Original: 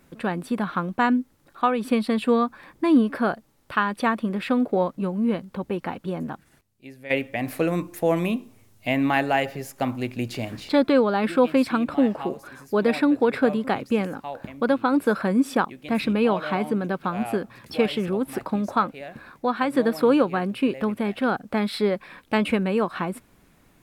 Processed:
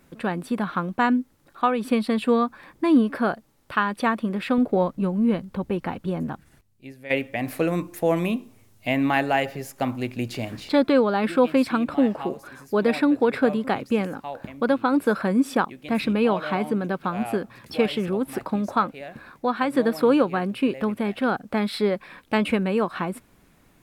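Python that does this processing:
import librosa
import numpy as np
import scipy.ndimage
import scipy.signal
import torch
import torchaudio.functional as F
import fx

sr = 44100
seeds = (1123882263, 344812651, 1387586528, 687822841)

y = fx.low_shelf(x, sr, hz=120.0, db=10.0, at=(4.58, 6.92))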